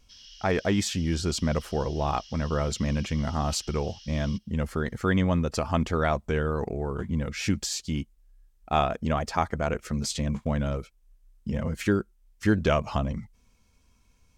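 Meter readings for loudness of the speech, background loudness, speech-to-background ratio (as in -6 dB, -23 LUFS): -28.0 LUFS, -47.0 LUFS, 19.0 dB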